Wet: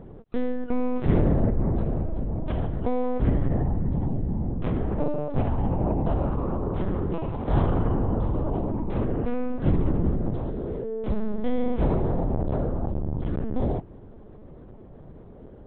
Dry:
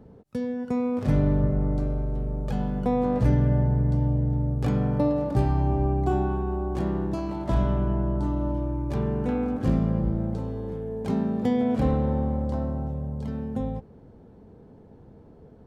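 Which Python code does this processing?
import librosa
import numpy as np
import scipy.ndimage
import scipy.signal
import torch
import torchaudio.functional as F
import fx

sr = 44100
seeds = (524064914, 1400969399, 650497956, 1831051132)

y = fx.rider(x, sr, range_db=10, speed_s=2.0)
y = fx.lpc_vocoder(y, sr, seeds[0], excitation='pitch_kept', order=8)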